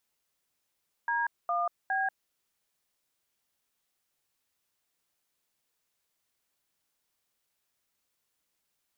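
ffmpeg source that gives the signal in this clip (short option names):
-f lavfi -i "aevalsrc='0.0355*clip(min(mod(t,0.41),0.188-mod(t,0.41))/0.002,0,1)*(eq(floor(t/0.41),0)*(sin(2*PI*941*mod(t,0.41))+sin(2*PI*1633*mod(t,0.41)))+eq(floor(t/0.41),1)*(sin(2*PI*697*mod(t,0.41))+sin(2*PI*1209*mod(t,0.41)))+eq(floor(t/0.41),2)*(sin(2*PI*770*mod(t,0.41))+sin(2*PI*1633*mod(t,0.41))))':d=1.23:s=44100"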